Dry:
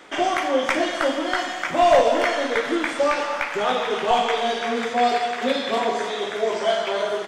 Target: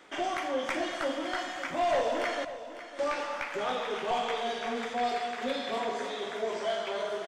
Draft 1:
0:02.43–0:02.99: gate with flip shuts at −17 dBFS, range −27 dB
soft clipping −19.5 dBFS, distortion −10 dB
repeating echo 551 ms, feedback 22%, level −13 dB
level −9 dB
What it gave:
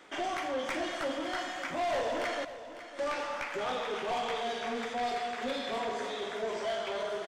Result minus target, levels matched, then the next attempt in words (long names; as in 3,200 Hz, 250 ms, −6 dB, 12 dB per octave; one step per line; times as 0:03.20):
soft clipping: distortion +7 dB
0:02.43–0:02.99: gate with flip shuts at −17 dBFS, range −27 dB
soft clipping −13 dBFS, distortion −17 dB
repeating echo 551 ms, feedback 22%, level −13 dB
level −9 dB